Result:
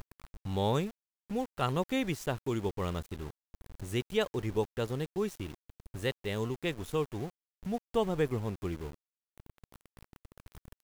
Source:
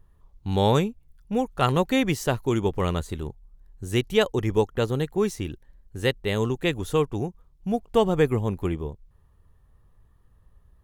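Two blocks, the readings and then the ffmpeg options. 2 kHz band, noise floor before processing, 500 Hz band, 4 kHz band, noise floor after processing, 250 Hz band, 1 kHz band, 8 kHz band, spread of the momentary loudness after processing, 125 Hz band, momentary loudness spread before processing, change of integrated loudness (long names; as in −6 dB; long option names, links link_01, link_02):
−9.0 dB, −59 dBFS, −9.0 dB, −9.0 dB, below −85 dBFS, −9.0 dB, −9.0 dB, −8.5 dB, 13 LU, −9.0 dB, 13 LU, −9.0 dB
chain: -af "acompressor=mode=upward:threshold=-26dB:ratio=2.5,aeval=exprs='val(0)*gte(abs(val(0)),0.0188)':channel_layout=same,volume=-9dB"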